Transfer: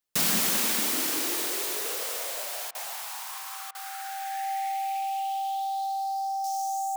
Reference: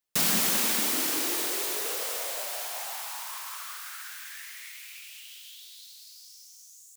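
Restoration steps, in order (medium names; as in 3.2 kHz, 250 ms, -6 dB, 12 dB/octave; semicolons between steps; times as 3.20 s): band-stop 780 Hz, Q 30; interpolate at 2.71/3.71 s, 38 ms; gain correction -10 dB, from 6.44 s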